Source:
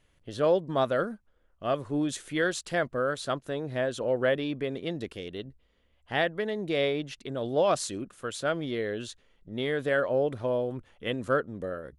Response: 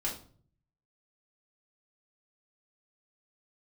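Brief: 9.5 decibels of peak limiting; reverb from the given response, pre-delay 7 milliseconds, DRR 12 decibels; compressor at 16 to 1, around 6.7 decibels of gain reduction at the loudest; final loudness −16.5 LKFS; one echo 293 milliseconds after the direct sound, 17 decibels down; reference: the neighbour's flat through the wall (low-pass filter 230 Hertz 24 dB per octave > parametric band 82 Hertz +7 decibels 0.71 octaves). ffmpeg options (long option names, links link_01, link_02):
-filter_complex "[0:a]acompressor=threshold=-26dB:ratio=16,alimiter=level_in=2dB:limit=-24dB:level=0:latency=1,volume=-2dB,aecho=1:1:293:0.141,asplit=2[link_01][link_02];[1:a]atrim=start_sample=2205,adelay=7[link_03];[link_02][link_03]afir=irnorm=-1:irlink=0,volume=-15.5dB[link_04];[link_01][link_04]amix=inputs=2:normalize=0,lowpass=frequency=230:width=0.5412,lowpass=frequency=230:width=1.3066,equalizer=frequency=82:width_type=o:width=0.71:gain=7,volume=27.5dB"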